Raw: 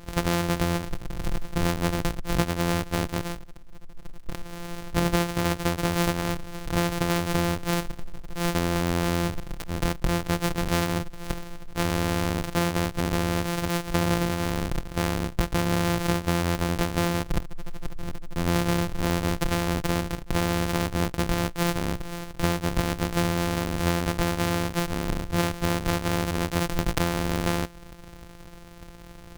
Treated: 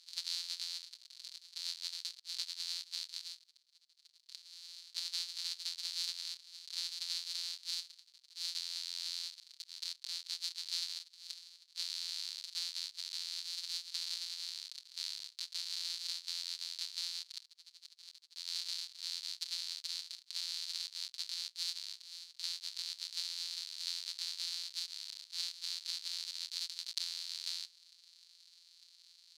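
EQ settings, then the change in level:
four-pole ladder band-pass 4,600 Hz, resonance 75%
high-shelf EQ 6,100 Hz +5 dB
+1.0 dB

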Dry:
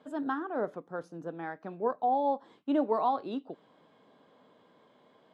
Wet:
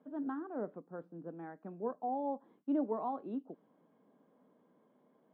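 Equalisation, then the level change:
resonant band-pass 200 Hz, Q 1.5
high-frequency loss of the air 490 metres
spectral tilt +4.5 dB per octave
+8.5 dB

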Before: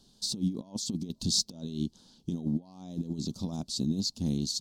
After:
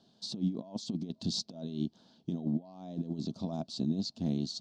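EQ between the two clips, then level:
band-pass filter 130–3,500 Hz
parametric band 660 Hz +10.5 dB 0.25 octaves
parametric band 1,700 Hz +3 dB 0.56 octaves
−1.0 dB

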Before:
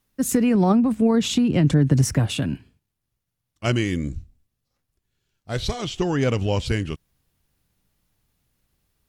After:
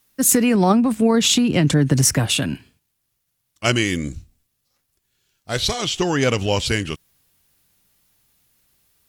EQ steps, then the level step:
spectral tilt +2 dB per octave
+5.5 dB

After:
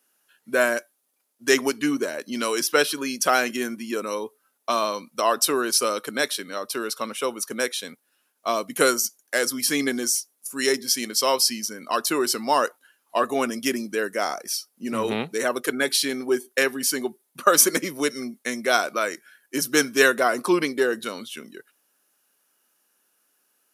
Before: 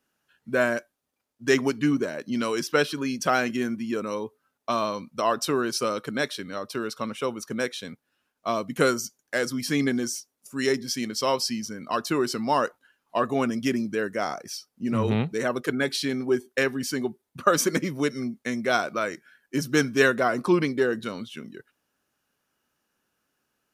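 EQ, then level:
high-pass filter 300 Hz 12 dB per octave
high-shelf EQ 4,300 Hz +6.5 dB
parametric band 11,000 Hz +9 dB 0.53 octaves
+2.5 dB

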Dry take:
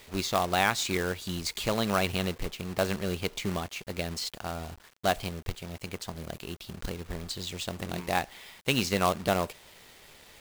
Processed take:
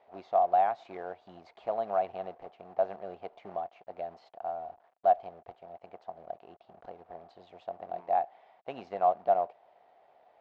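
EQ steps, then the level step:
resonant band-pass 710 Hz, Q 7.7
high-frequency loss of the air 160 metres
+8.0 dB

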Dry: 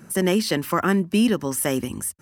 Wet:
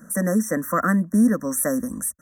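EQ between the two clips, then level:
linear-phase brick-wall band-stop 2,000–5,500 Hz
phaser with its sweep stopped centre 570 Hz, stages 8
+2.5 dB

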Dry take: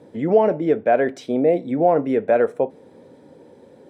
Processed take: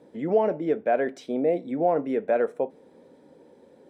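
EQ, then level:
parametric band 110 Hz −12.5 dB 0.47 octaves
−6.0 dB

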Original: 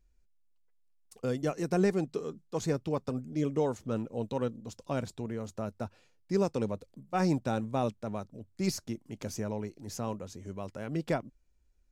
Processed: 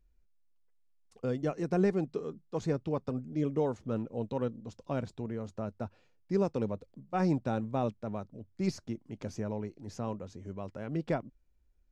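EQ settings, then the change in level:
head-to-tape spacing loss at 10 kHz 22 dB
high-shelf EQ 5,100 Hz +7 dB
0.0 dB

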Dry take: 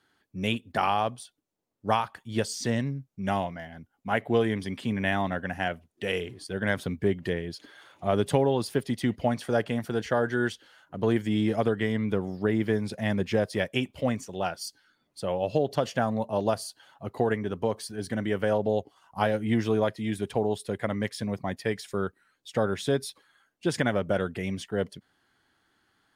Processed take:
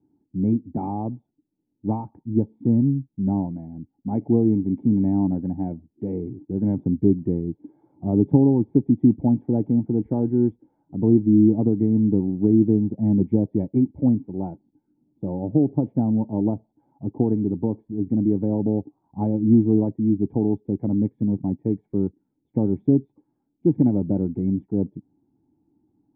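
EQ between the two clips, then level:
formant resonators in series u
spectral tilt −1.5 dB per octave
parametric band 140 Hz +11 dB 2.3 octaves
+7.0 dB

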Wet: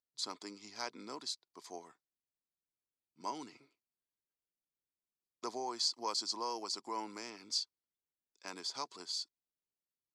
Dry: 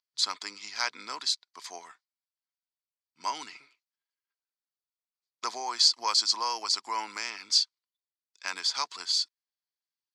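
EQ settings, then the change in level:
drawn EQ curve 370 Hz 0 dB, 1,600 Hz −19 dB, 2,800 Hz −19 dB, 11,000 Hz −12 dB
+4.0 dB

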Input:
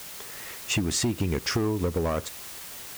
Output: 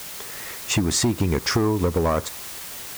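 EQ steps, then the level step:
dynamic equaliser 980 Hz, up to +4 dB, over −47 dBFS, Q 2.3
dynamic equaliser 2,800 Hz, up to −5 dB, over −50 dBFS, Q 4.4
+5.0 dB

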